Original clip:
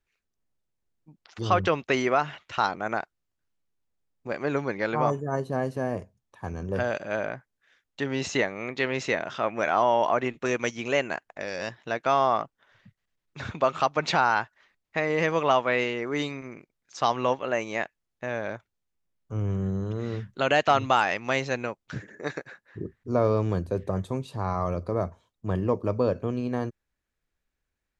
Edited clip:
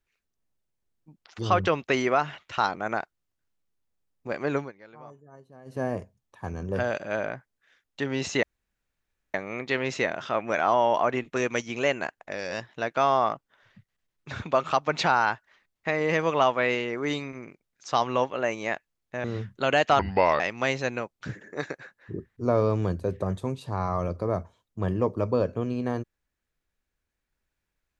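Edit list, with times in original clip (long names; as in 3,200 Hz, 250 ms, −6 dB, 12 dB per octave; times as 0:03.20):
0:04.57–0:05.80: duck −22 dB, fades 0.15 s
0:08.43: splice in room tone 0.91 s
0:18.33–0:20.02: remove
0:20.77–0:21.07: play speed 73%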